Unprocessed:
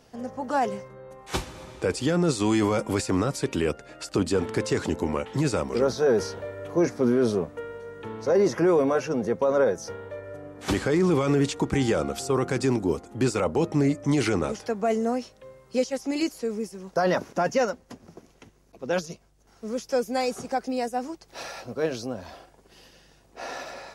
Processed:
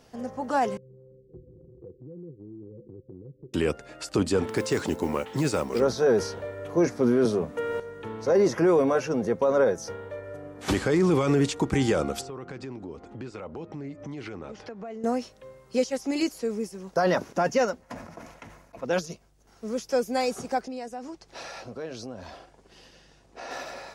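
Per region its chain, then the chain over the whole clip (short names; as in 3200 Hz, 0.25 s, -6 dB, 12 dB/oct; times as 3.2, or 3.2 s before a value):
0.77–3.54 rippled Chebyshev low-pass 520 Hz, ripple 9 dB + compressor 2.5:1, threshold -48 dBFS
4.47–5.8 low shelf 84 Hz -8.5 dB + modulation noise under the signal 28 dB
7.25–7.8 notches 50/100/150/200/250 Hz + three-band squash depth 100%
12.21–15.04 LPF 3800 Hz + compressor 4:1, threshold -37 dBFS
17.82–18.85 band shelf 1200 Hz +9 dB 2.3 oct + notch comb 390 Hz + sustainer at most 61 dB/s
20.61–23.51 LPF 8300 Hz + compressor 2.5:1, threshold -36 dBFS
whole clip: dry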